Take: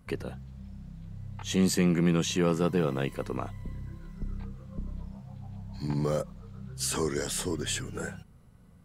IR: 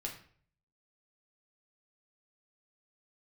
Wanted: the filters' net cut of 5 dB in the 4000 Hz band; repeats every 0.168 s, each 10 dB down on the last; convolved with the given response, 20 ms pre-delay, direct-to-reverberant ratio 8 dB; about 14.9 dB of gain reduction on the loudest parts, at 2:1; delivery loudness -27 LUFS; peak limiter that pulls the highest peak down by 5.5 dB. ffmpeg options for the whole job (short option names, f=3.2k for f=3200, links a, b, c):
-filter_complex "[0:a]equalizer=f=4k:t=o:g=-6.5,acompressor=threshold=-49dB:ratio=2,alimiter=level_in=10dB:limit=-24dB:level=0:latency=1,volume=-10dB,aecho=1:1:168|336|504|672:0.316|0.101|0.0324|0.0104,asplit=2[a][b];[1:a]atrim=start_sample=2205,adelay=20[c];[b][c]afir=irnorm=-1:irlink=0,volume=-7.5dB[d];[a][d]amix=inputs=2:normalize=0,volume=18dB"